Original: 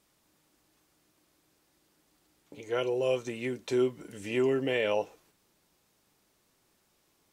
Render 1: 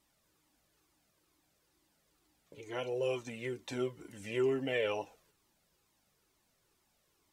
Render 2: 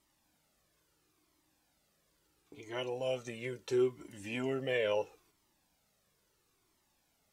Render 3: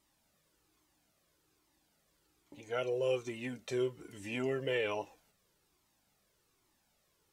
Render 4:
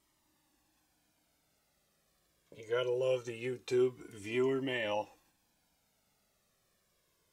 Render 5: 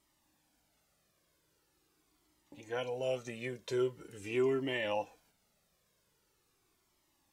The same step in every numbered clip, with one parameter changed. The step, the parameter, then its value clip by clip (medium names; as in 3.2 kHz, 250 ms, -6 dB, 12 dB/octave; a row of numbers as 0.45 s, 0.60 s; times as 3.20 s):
Shepard-style flanger, rate: 2.2 Hz, 0.74 Hz, 1.2 Hz, 0.22 Hz, 0.43 Hz